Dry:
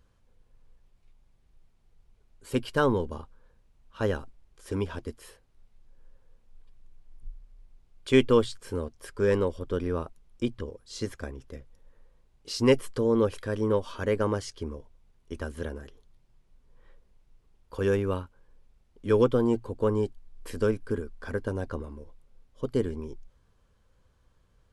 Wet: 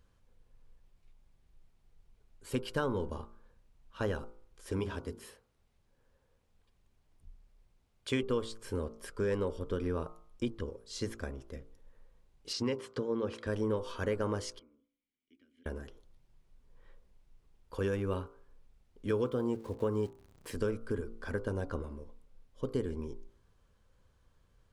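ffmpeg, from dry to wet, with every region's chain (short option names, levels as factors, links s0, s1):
-filter_complex "[0:a]asettb=1/sr,asplit=3[s0][s1][s2];[s0]atrim=end=4.794[s3];[s1]atrim=start=4.79:end=8.23,asetpts=PTS-STARTPTS,afade=t=in:d=0.004:c=qsin,afade=t=out:st=3.436:d=0.004:c=qsin,highpass=50,bandreject=f=50:t=h:w=6,bandreject=f=100:t=h:w=6,bandreject=f=150:t=h:w=6,bandreject=f=200:t=h:w=6,bandreject=f=250:t=h:w=6,bandreject=f=300:t=h:w=6,bandreject=f=350:t=h:w=6,bandreject=f=400:t=h:w=6[s4];[s2]atrim=start=8.226[s5];[s3][s4]acrossfade=d=0.004:c1=hsin:c2=qsin[s6];[s6][s5]acrossfade=d=0.004:c1=qsin:c2=hsin,asettb=1/sr,asplit=3[s7][s8][s9];[s7]atrim=end=12.534[s10];[s8]atrim=start=12.53:end=13.47,asetpts=PTS-STARTPTS,afade=t=in:d=0.004:c=qsin,afade=t=out:st=0.936:d=0.004:c=qsin,acompressor=threshold=0.0631:ratio=3:attack=3.2:release=140:knee=1:detection=peak,highpass=110,lowpass=5700[s11];[s9]atrim=start=13.466[s12];[s10][s11]acrossfade=d=0.004:c1=hsin:c2=qsin[s13];[s13][s12]acrossfade=d=0.004:c1=qsin:c2=hsin,asettb=1/sr,asplit=3[s14][s15][s16];[s14]atrim=end=14.594[s17];[s15]atrim=start=14.59:end=15.66,asetpts=PTS-STARTPTS,afade=t=in:d=0.004:c=qsin,afade=t=out:st=1.066:d=0.004:c=qsin,lowshelf=f=430:g=-10,acompressor=threshold=0.00224:ratio=2:attack=3.2:release=140:knee=1:detection=peak,asplit=3[s18][s19][s20];[s18]bandpass=f=270:t=q:w=8,volume=1[s21];[s19]bandpass=f=2290:t=q:w=8,volume=0.501[s22];[s20]bandpass=f=3010:t=q:w=8,volume=0.355[s23];[s21][s22][s23]amix=inputs=3:normalize=0[s24];[s16]atrim=start=15.656[s25];[s17][s24]acrossfade=d=0.004:c1=hsin:c2=qsin[s26];[s26][s25]acrossfade=d=0.004:c1=qsin:c2=hsin,asettb=1/sr,asplit=3[s27][s28][s29];[s27]atrim=end=19.084[s30];[s28]atrim=start=19.08:end=20.55,asetpts=PTS-STARTPTS,afade=t=in:d=0.004:c=qsin,afade=t=out:st=1.466:d=0.004:c=qsin,aeval=exprs='val(0)*gte(abs(val(0)),0.00355)':c=same,highpass=51[s31];[s29]atrim=start=20.546[s32];[s30][s31]acrossfade=d=0.004:c1=hsin:c2=qsin[s33];[s33][s32]acrossfade=d=0.004:c1=qsin:c2=hsin,acompressor=threshold=0.0501:ratio=5,bandreject=f=56.49:t=h:w=4,bandreject=f=112.98:t=h:w=4,bandreject=f=169.47:t=h:w=4,bandreject=f=225.96:t=h:w=4,bandreject=f=282.45:t=h:w=4,bandreject=f=338.94:t=h:w=4,bandreject=f=395.43:t=h:w=4,bandreject=f=451.92:t=h:w=4,bandreject=f=508.41:t=h:w=4,bandreject=f=564.9:t=h:w=4,bandreject=f=621.39:t=h:w=4,bandreject=f=677.88:t=h:w=4,bandreject=f=734.37:t=h:w=4,bandreject=f=790.86:t=h:w=4,bandreject=f=847.35:t=h:w=4,bandreject=f=903.84:t=h:w=4,bandreject=f=960.33:t=h:w=4,bandreject=f=1016.82:t=h:w=4,bandreject=f=1073.31:t=h:w=4,bandreject=f=1129.8:t=h:w=4,bandreject=f=1186.29:t=h:w=4,bandreject=f=1242.78:t=h:w=4,bandreject=f=1299.27:t=h:w=4,bandreject=f=1355.76:t=h:w=4,bandreject=f=1412.25:t=h:w=4,bandreject=f=1468.74:t=h:w=4,volume=0.794"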